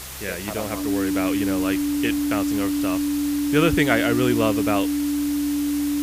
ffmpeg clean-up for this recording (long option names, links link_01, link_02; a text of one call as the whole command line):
ffmpeg -i in.wav -af "adeclick=threshold=4,bandreject=frequency=65.4:width_type=h:width=4,bandreject=frequency=130.8:width_type=h:width=4,bandreject=frequency=196.2:width_type=h:width=4,bandreject=frequency=290:width=30,afwtdn=0.018" out.wav